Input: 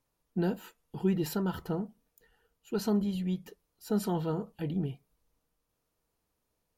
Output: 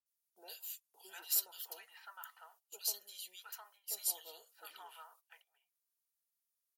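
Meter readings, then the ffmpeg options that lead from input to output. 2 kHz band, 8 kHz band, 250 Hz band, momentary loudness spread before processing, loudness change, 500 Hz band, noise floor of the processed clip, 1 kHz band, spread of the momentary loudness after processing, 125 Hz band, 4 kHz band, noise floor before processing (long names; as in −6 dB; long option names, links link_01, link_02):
−6.5 dB, +8.5 dB, below −40 dB, 11 LU, −6.5 dB, −25.0 dB, below −85 dBFS, −12.0 dB, 21 LU, below −40 dB, +2.0 dB, −81 dBFS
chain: -filter_complex "[0:a]acrossover=split=760|2300[link_01][link_02][link_03];[link_03]adelay=60[link_04];[link_02]adelay=710[link_05];[link_01][link_05][link_04]amix=inputs=3:normalize=0,agate=range=-13dB:threshold=-57dB:ratio=16:detection=peak,highpass=frequency=570:width=0.5412,highpass=frequency=570:width=1.3066,aderivative,volume=8dB"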